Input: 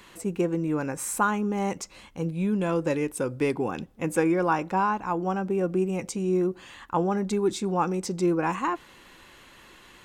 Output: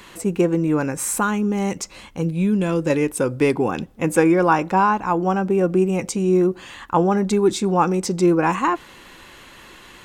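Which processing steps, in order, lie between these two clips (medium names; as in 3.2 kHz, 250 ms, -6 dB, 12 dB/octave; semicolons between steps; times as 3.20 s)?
0.83–2.90 s: dynamic bell 880 Hz, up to -7 dB, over -37 dBFS, Q 0.71; trim +7.5 dB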